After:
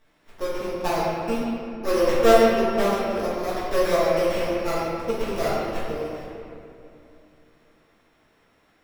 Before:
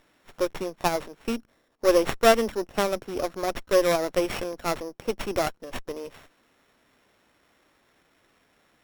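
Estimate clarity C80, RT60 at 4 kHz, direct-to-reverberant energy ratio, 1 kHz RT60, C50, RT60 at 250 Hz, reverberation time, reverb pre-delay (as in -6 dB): -1.0 dB, 1.5 s, -10.5 dB, 2.5 s, -3.0 dB, 3.3 s, 2.7 s, 4 ms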